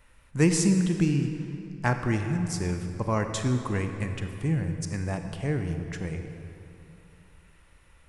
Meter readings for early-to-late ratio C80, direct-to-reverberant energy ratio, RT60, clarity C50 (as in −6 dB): 7.5 dB, 6.0 dB, 2.9 s, 6.5 dB